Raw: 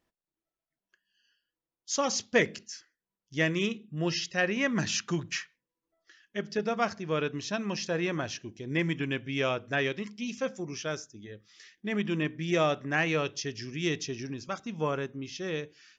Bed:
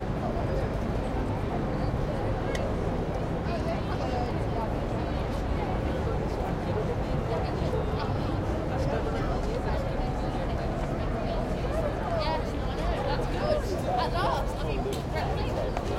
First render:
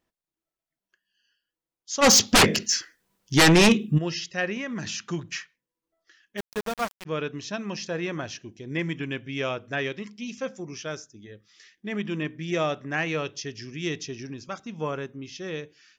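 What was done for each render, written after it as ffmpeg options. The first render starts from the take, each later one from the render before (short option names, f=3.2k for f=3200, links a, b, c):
-filter_complex "[0:a]asplit=3[a][b][c];[a]afade=t=out:st=2.01:d=0.02[d];[b]aeval=exprs='0.266*sin(PI/2*5.62*val(0)/0.266)':c=same,afade=t=in:st=2.01:d=0.02,afade=t=out:st=3.97:d=0.02[e];[c]afade=t=in:st=3.97:d=0.02[f];[d][e][f]amix=inputs=3:normalize=0,asettb=1/sr,asplit=3[g][h][i];[g]atrim=end=4.574[j];[h]atrim=start=4.57:end=5.05,asetpts=PTS-STARTPTS,afade=t=in:d=0.004:c=qsin,afade=t=out:st=0.476:d=0.004:c=qsin,acompressor=threshold=-28dB:ratio=5:attack=3.2:release=140:knee=1:detection=peak[k];[i]atrim=start=5.046[l];[j][k]acrossfade=d=0.004:c1=hsin:c2=qsin[m];[m][l]acrossfade=d=0.004:c1=qsin:c2=hsin,asplit=3[n][o][p];[n]afade=t=out:st=6.37:d=0.02[q];[o]aeval=exprs='val(0)*gte(abs(val(0)),0.0355)':c=same,afade=t=in:st=6.37:d=0.02,afade=t=out:st=7.05:d=0.02[r];[p]afade=t=in:st=7.05:d=0.02[s];[q][r][s]amix=inputs=3:normalize=0"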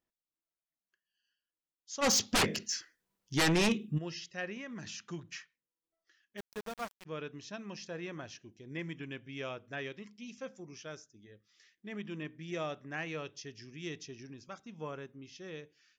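-af "volume=-11.5dB"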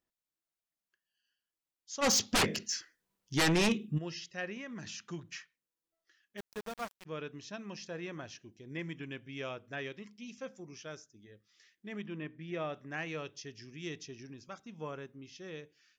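-filter_complex "[0:a]asplit=3[a][b][c];[a]afade=t=out:st=12.06:d=0.02[d];[b]lowpass=3k,afade=t=in:st=12.06:d=0.02,afade=t=out:st=12.72:d=0.02[e];[c]afade=t=in:st=12.72:d=0.02[f];[d][e][f]amix=inputs=3:normalize=0"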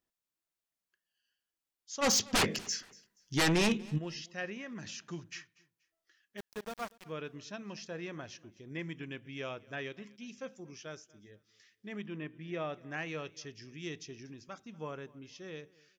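-af "aecho=1:1:239|478:0.0708|0.0212"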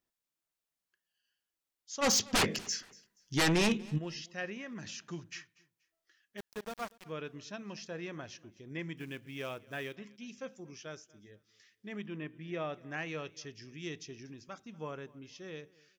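-filter_complex "[0:a]asettb=1/sr,asplit=3[a][b][c];[a]atrim=end=8.974[d];[b]atrim=start=8.97:end=9.96,asetpts=PTS-STARTPTS,afade=t=in:d=0.004:c=qsin,afade=t=out:st=0.986:d=0.004:c=qsin,acrusher=bits=5:mode=log:mix=0:aa=0.000001[e];[c]atrim=start=9.956[f];[d][e]acrossfade=d=0.004:c1=hsin:c2=qsin[g];[g][f]acrossfade=d=0.004:c1=qsin:c2=hsin"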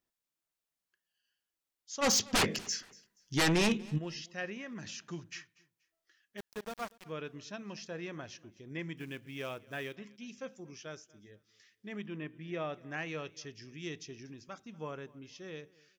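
-af anull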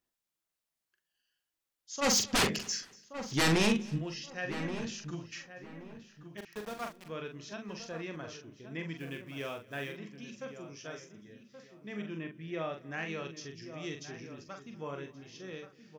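-filter_complex "[0:a]asplit=2[a][b];[b]adelay=43,volume=-6dB[c];[a][c]amix=inputs=2:normalize=0,asplit=2[d][e];[e]adelay=1126,lowpass=f=1.7k:p=1,volume=-10dB,asplit=2[f][g];[g]adelay=1126,lowpass=f=1.7k:p=1,volume=0.27,asplit=2[h][i];[i]adelay=1126,lowpass=f=1.7k:p=1,volume=0.27[j];[d][f][h][j]amix=inputs=4:normalize=0"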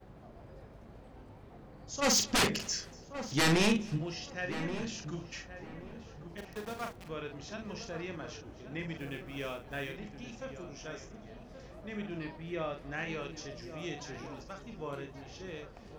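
-filter_complex "[1:a]volume=-23dB[a];[0:a][a]amix=inputs=2:normalize=0"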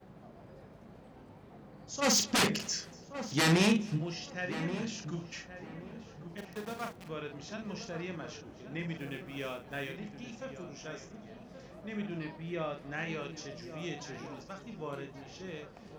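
-af "highpass=f=140:p=1,equalizer=f=180:w=2.3:g=6"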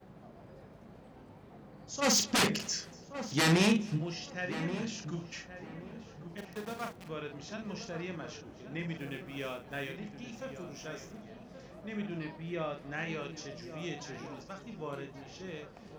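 -filter_complex "[0:a]asettb=1/sr,asplit=3[a][b][c];[a]atrim=end=10.334[d];[b]atrim=start=10.33:end=11.22,asetpts=PTS-STARTPTS,afade=t=in:d=0.004:c=qsin,afade=t=out:st=0.886:d=0.004:c=qsin,aeval=exprs='val(0)+0.5*0.00141*sgn(val(0))':c=same[e];[c]atrim=start=11.216[f];[d][e]acrossfade=d=0.004:c1=hsin:c2=qsin[g];[g][f]acrossfade=d=0.004:c1=qsin:c2=hsin"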